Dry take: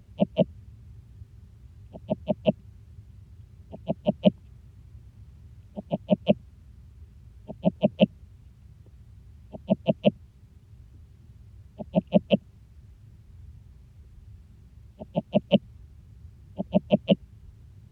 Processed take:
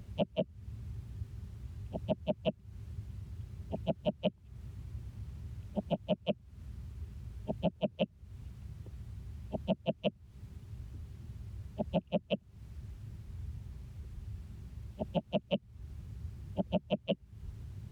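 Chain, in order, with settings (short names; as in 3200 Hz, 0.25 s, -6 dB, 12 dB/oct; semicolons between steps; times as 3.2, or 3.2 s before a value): compressor 12:1, threshold -33 dBFS, peak gain reduction 20.5 dB; gain +4 dB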